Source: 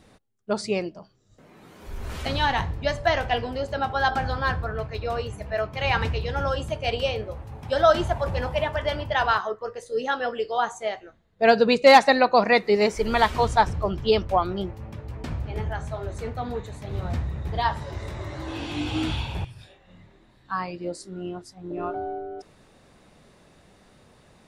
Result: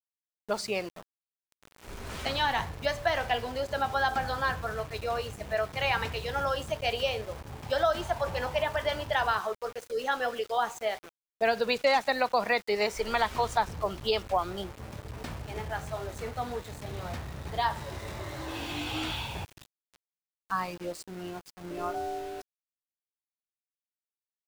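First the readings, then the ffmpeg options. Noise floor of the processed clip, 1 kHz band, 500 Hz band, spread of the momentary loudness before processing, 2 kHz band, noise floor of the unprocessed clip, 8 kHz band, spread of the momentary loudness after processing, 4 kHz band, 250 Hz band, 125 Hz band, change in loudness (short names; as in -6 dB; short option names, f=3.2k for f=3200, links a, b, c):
under -85 dBFS, -6.0 dB, -7.0 dB, 16 LU, -5.0 dB, -57 dBFS, -1.5 dB, 13 LU, -4.0 dB, -10.0 dB, -9.0 dB, -6.5 dB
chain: -filter_complex "[0:a]aresample=22050,aresample=44100,acrossover=split=100|490[a][b][c];[a]acompressor=threshold=-43dB:ratio=4[d];[b]acompressor=threshold=-40dB:ratio=4[e];[c]acompressor=threshold=-23dB:ratio=4[f];[d][e][f]amix=inputs=3:normalize=0,aeval=exprs='val(0)*gte(abs(val(0)),0.00891)':c=same,volume=-1dB"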